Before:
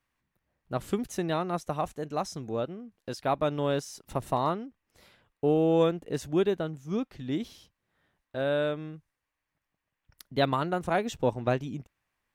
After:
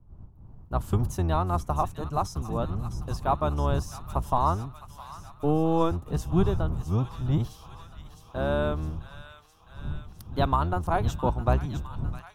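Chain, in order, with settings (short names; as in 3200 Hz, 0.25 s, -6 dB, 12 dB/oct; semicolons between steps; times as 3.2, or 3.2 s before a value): octaver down 1 oct, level +3 dB; wind noise 130 Hz -40 dBFS; graphic EQ 250/500/1000/2000/4000/8000 Hz -6/-8/+7/-12/-5/-4 dB; AGC gain up to 14.5 dB; thin delay 0.66 s, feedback 72%, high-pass 1600 Hz, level -9.5 dB; gain -8.5 dB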